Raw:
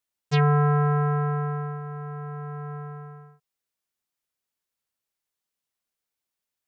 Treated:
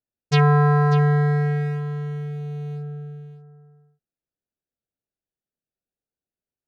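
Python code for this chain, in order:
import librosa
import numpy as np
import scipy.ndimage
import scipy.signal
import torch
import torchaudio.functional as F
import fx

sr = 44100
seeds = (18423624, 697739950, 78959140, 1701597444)

y = fx.wiener(x, sr, points=41)
y = fx.high_shelf(y, sr, hz=4200.0, db=5.5)
y = y + 10.0 ** (-12.5 / 20.0) * np.pad(y, (int(593 * sr / 1000.0), 0))[:len(y)]
y = y * 10.0 ** (4.0 / 20.0)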